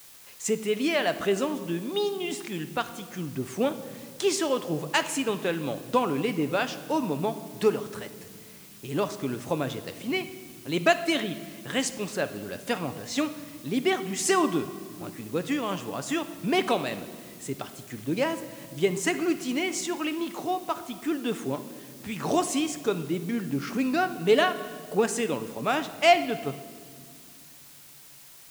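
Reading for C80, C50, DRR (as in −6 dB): 14.0 dB, 12.5 dB, 9.5 dB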